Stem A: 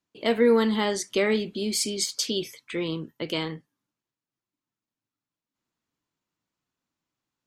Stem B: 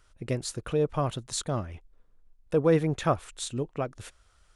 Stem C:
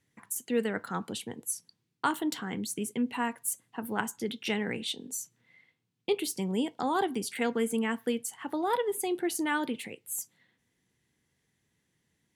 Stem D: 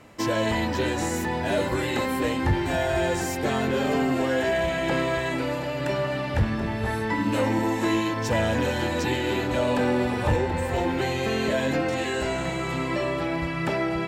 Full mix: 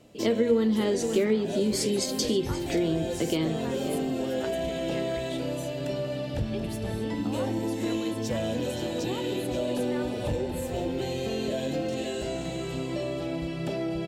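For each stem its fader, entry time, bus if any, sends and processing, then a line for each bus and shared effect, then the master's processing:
0.0 dB, 0.00 s, no send, echo send -15.5 dB, resonant low shelf 560 Hz +8 dB, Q 1.5; notches 60/120/180/240/300/360/420/480 Hz
off
-10.5 dB, 0.45 s, no send, no echo send, dry
-3.5 dB, 0.00 s, no send, echo send -10.5 dB, band shelf 1400 Hz -11 dB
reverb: off
echo: echo 0.528 s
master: bell 83 Hz -8.5 dB 0.33 oct; compressor 2.5:1, threshold -25 dBFS, peak gain reduction 12.5 dB

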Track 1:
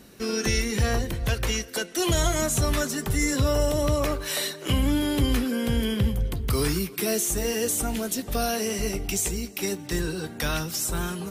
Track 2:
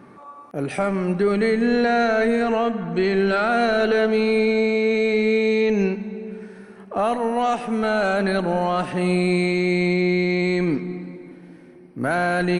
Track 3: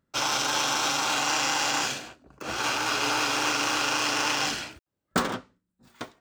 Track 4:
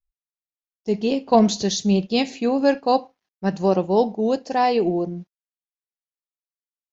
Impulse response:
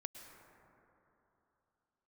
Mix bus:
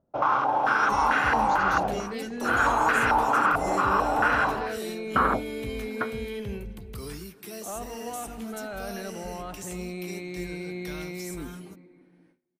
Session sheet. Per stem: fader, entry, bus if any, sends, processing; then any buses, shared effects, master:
-14.0 dB, 0.45 s, no send, dry
-16.0 dB, 0.70 s, no send, gate with hold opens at -35 dBFS
+1.5 dB, 0.00 s, no send, limiter -18 dBFS, peak gain reduction 7 dB; stepped low-pass 4.5 Hz 690–1700 Hz
-19.5 dB, 0.00 s, no send, dry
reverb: off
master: dry

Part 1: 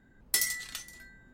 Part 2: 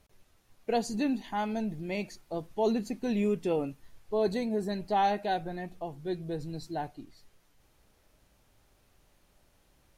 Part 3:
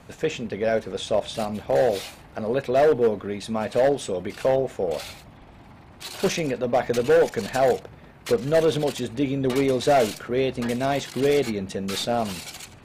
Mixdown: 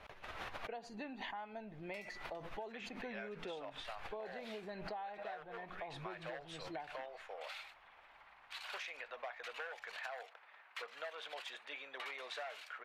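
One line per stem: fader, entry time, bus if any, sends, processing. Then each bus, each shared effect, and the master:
-11.0 dB, 1.60 s, no send, high shelf 6800 Hz -9.5 dB
+0.5 dB, 0.00 s, no send, high shelf 6800 Hz -9.5 dB; backwards sustainer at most 31 dB/s
-4.0 dB, 2.50 s, no send, HPF 1100 Hz 12 dB/oct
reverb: off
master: three-band isolator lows -16 dB, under 570 Hz, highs -20 dB, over 3300 Hz; compressor 16:1, threshold -42 dBFS, peak gain reduction 19 dB

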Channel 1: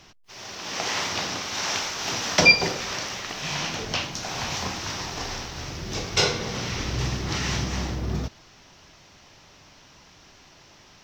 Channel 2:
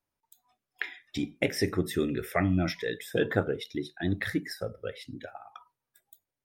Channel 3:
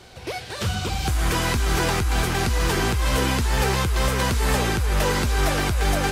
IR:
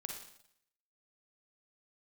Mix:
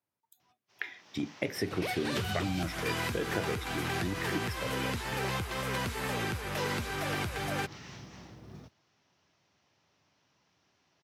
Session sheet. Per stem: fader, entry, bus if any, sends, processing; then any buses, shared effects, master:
-19.0 dB, 0.40 s, no bus, no send, modulation noise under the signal 28 dB; auto duck -6 dB, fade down 1.35 s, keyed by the second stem
-2.0 dB, 0.00 s, bus A, no send, dry
-1.0 dB, 1.55 s, bus A, no send, bell 2400 Hz +4 dB 1.4 oct; compressor, threshold -25 dBFS, peak gain reduction 8.5 dB
bus A: 0.0 dB, bell 12000 Hz +5.5 dB 0.33 oct; compressor, threshold -27 dBFS, peak gain reduction 7 dB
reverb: off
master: HPF 86 Hz 24 dB/oct; high shelf 4300 Hz -5.5 dB

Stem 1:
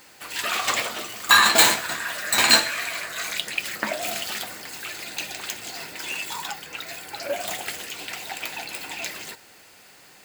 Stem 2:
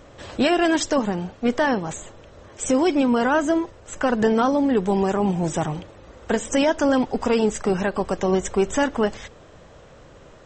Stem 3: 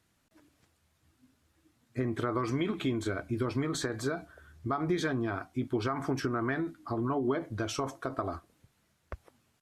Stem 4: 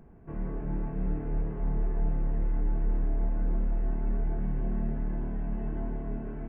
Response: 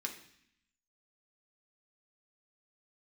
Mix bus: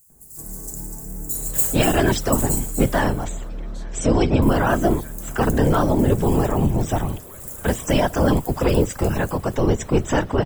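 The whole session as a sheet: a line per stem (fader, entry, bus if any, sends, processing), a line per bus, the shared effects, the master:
+1.0 dB, 0.00 s, muted 3–4.42, no send, echo send -7 dB, inverse Chebyshev band-stop 400–3000 Hz, stop band 60 dB
-0.5 dB, 1.35 s, no send, no echo send, octaver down 2 oct, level +3 dB; notch 6600 Hz; whisperiser
-12.0 dB, 0.00 s, no send, no echo send, HPF 650 Hz
-3.5 dB, 0.10 s, no send, no echo send, dry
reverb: off
echo: feedback echo 0.245 s, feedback 22%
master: dry

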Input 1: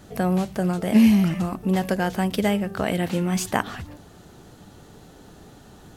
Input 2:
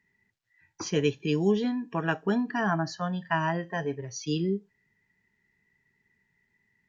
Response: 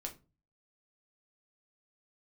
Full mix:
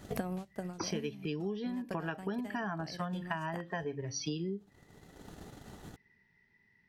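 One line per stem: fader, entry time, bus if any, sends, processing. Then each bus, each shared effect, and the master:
-4.0 dB, 0.00 s, no send, transient shaper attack +9 dB, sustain -11 dB; auto duck -15 dB, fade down 0.25 s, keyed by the second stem
+2.5 dB, 0.00 s, no send, steep low-pass 5900 Hz 96 dB/oct; de-hum 140.1 Hz, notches 2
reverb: off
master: compressor 12:1, threshold -33 dBFS, peak gain reduction 18 dB

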